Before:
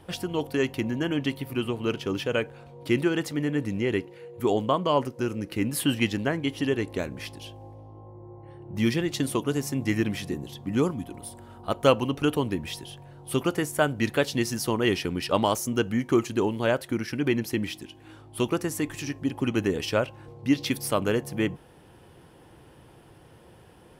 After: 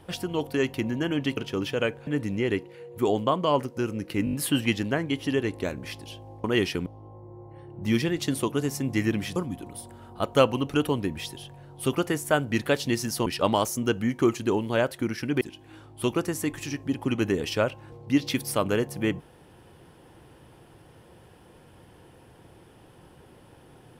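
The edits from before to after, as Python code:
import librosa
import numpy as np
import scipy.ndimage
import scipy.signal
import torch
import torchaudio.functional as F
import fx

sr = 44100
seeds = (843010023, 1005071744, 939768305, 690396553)

y = fx.edit(x, sr, fx.cut(start_s=1.37, length_s=0.53),
    fx.cut(start_s=2.6, length_s=0.89),
    fx.stutter(start_s=5.67, slice_s=0.02, count=5),
    fx.cut(start_s=10.28, length_s=0.56),
    fx.move(start_s=14.74, length_s=0.42, to_s=7.78),
    fx.cut(start_s=17.31, length_s=0.46), tone=tone)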